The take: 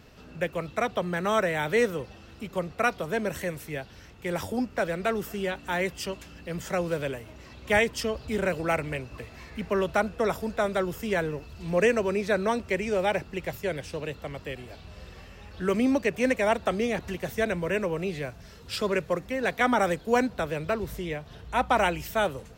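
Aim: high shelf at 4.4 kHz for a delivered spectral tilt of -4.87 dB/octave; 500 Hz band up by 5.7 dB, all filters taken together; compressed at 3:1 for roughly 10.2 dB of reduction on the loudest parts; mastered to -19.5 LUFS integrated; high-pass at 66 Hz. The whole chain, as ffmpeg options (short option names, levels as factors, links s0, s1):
-af "highpass=66,equalizer=f=500:t=o:g=7,highshelf=f=4400:g=-7,acompressor=threshold=0.0501:ratio=3,volume=3.55"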